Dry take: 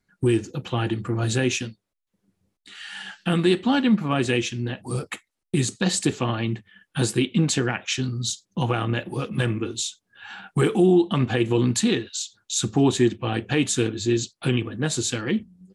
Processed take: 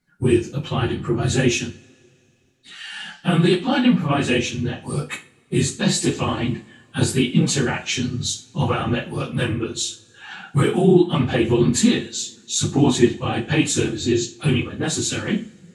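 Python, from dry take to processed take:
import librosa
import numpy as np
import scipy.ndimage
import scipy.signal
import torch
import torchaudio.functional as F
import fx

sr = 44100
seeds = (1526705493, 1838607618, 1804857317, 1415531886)

y = fx.phase_scramble(x, sr, seeds[0], window_ms=50)
y = fx.rev_double_slope(y, sr, seeds[1], early_s=0.32, late_s=2.7, knee_db=-28, drr_db=5.0)
y = y * librosa.db_to_amplitude(2.0)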